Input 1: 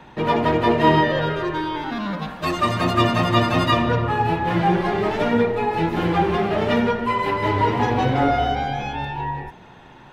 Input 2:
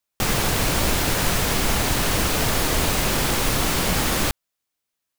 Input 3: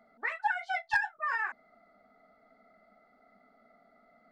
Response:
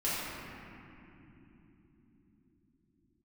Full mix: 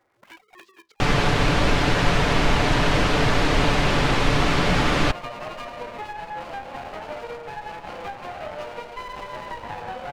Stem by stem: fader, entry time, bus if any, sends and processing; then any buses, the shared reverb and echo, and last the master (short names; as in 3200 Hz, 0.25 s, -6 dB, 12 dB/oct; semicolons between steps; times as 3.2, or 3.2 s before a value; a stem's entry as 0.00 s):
-5.0 dB, 1.90 s, no send, Chebyshev band-pass 510–3100 Hz, order 5; compressor, threshold -23 dBFS, peak gain reduction 9.5 dB; running maximum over 17 samples
+2.5 dB, 0.80 s, no send, LPF 3400 Hz 12 dB/oct; comb 6.9 ms, depth 37%
-11.5 dB, 0.00 s, no send, cycle switcher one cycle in 2, inverted; negative-ratio compressor -38 dBFS, ratio -0.5; de-hum 66.62 Hz, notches 3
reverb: off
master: dry